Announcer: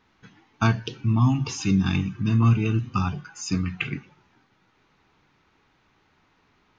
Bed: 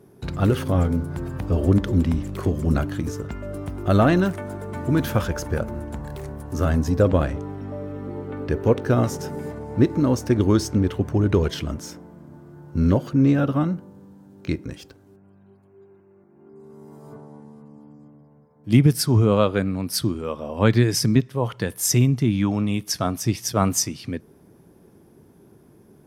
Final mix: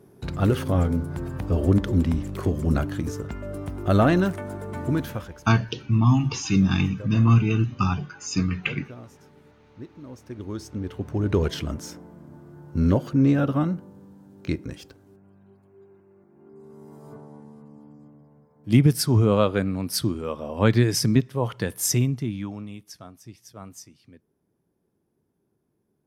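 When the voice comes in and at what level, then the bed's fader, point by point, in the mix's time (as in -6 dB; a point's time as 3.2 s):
4.85 s, +1.5 dB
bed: 4.87 s -1.5 dB
5.57 s -23 dB
10 s -23 dB
11.44 s -1.5 dB
21.83 s -1.5 dB
23.15 s -21.5 dB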